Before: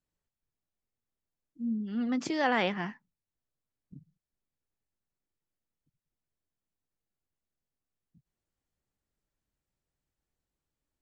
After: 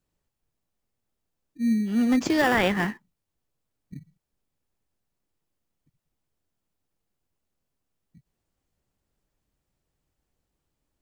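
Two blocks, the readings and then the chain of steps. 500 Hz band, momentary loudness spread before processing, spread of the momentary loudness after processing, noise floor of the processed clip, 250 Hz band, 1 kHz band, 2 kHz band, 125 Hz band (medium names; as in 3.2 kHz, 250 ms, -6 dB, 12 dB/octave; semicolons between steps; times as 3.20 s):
+6.5 dB, 11 LU, 8 LU, -82 dBFS, +9.0 dB, +4.5 dB, +7.5 dB, +9.0 dB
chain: dynamic bell 1.8 kHz, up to +6 dB, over -46 dBFS, Q 3.2; in parallel at -7 dB: sample-and-hold 21×; on the sum: loudness maximiser +14.5 dB; trim -8.5 dB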